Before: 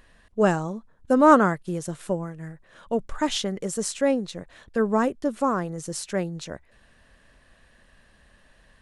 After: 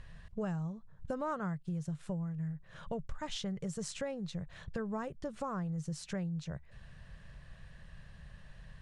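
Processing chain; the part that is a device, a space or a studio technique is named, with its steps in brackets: jukebox (LPF 7400 Hz 12 dB/oct; resonant low shelf 200 Hz +9 dB, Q 3; compressor 5:1, threshold -35 dBFS, peak gain reduction 20 dB); gain -2 dB

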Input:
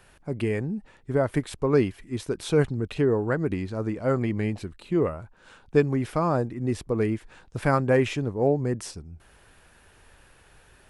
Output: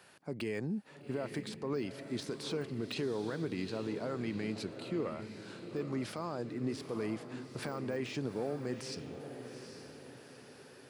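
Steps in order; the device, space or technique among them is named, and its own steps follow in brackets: HPF 160 Hz 12 dB/oct; dynamic EQ 4900 Hz, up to +7 dB, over -50 dBFS, Q 0.8; broadcast voice chain (HPF 82 Hz 24 dB/oct; de-esser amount 95%; compressor 4:1, threshold -28 dBFS, peak gain reduction 11 dB; bell 4600 Hz +6 dB 0.37 oct; limiter -24.5 dBFS, peak gain reduction 9.5 dB); diffused feedback echo 0.82 s, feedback 46%, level -9 dB; gain -3 dB

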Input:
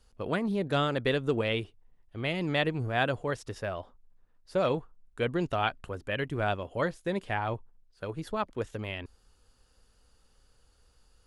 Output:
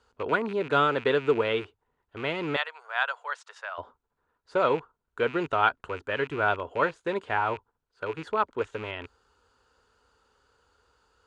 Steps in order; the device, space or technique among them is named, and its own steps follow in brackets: 2.56–3.78 Bessel high-pass 1100 Hz, order 8; car door speaker with a rattle (rattling part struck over -41 dBFS, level -32 dBFS; speaker cabinet 83–7300 Hz, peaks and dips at 120 Hz -7 dB, 190 Hz -8 dB, 430 Hz +7 dB, 960 Hz +9 dB, 1400 Hz +10 dB, 5400 Hz -7 dB)

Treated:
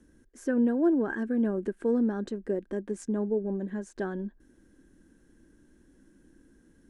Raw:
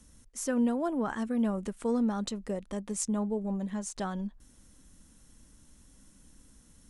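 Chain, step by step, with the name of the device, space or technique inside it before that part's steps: inside a helmet (high shelf 3100 Hz -9 dB; small resonant body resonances 350/1600 Hz, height 18 dB, ringing for 25 ms); gain -6 dB

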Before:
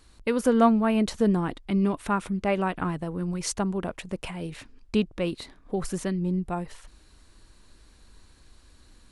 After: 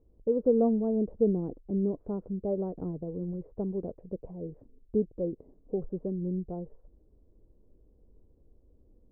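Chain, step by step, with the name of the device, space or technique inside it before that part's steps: under water (LPF 580 Hz 24 dB/oct; bell 460 Hz +7.5 dB 0.6 oct); gain -6 dB

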